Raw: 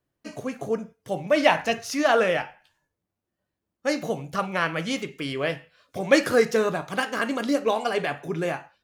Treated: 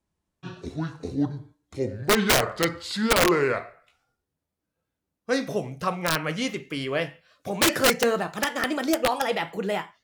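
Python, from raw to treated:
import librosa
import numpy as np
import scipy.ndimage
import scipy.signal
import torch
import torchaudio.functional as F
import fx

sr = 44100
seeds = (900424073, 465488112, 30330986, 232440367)

y = fx.speed_glide(x, sr, from_pct=56, to_pct=120)
y = (np.mod(10.0 ** (12.5 / 20.0) * y + 1.0, 2.0) - 1.0) / 10.0 ** (12.5 / 20.0)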